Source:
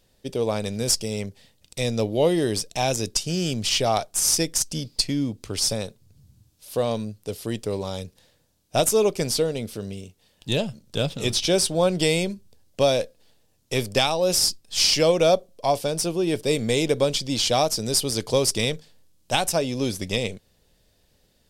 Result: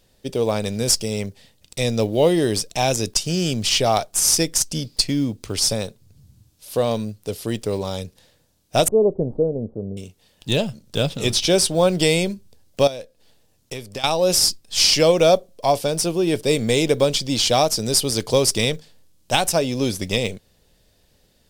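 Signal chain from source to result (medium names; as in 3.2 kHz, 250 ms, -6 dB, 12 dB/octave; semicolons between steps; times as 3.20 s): block-companded coder 7-bit; 8.88–9.97 s: inverse Chebyshev low-pass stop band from 2.3 kHz, stop band 60 dB; 12.87–14.04 s: compression 4:1, threshold -35 dBFS, peak gain reduction 16 dB; trim +3.5 dB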